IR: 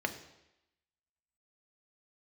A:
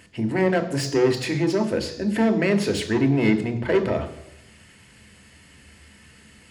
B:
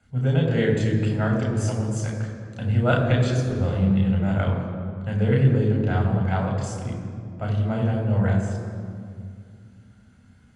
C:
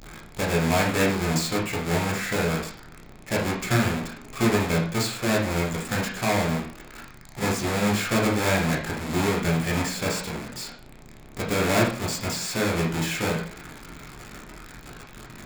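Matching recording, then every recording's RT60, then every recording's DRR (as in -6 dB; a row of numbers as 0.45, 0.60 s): A; 0.90, 2.2, 0.45 s; 6.0, -0.5, -3.0 dB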